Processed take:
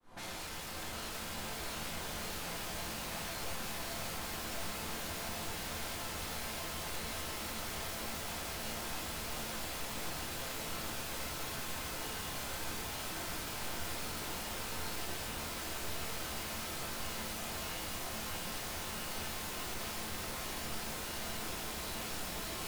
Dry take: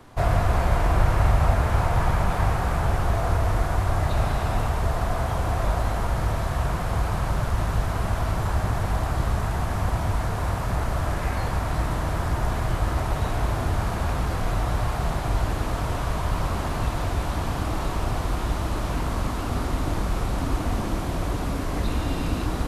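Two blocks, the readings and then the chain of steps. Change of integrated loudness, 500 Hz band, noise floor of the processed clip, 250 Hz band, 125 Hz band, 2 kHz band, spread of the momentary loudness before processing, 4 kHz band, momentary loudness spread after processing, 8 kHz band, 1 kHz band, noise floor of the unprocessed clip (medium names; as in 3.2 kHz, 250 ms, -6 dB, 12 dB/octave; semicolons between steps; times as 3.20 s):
-13.5 dB, -15.0 dB, -42 dBFS, -15.5 dB, -24.5 dB, -8.5 dB, 5 LU, -1.5 dB, 0 LU, 0.0 dB, -15.5 dB, -28 dBFS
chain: fade-in on the opening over 3.61 s; reverb removal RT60 0.93 s; bass shelf 230 Hz -3.5 dB; in parallel at +2 dB: compressor with a negative ratio -34 dBFS; on the sum: peak limiter -21 dBFS, peak gain reduction 8 dB; hard clipper -35 dBFS, distortion -6 dB; flange 1.5 Hz, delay 3.3 ms, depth 5.7 ms, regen -43%; sine folder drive 19 dB, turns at -35 dBFS; feedback comb 220 Hz, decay 1.1 s, mix 70%; on a send: echo that smears into a reverb 644 ms, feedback 77%, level -3.5 dB; on the sum: simulated room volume 110 m³, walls mixed, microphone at 0.87 m; trim +1 dB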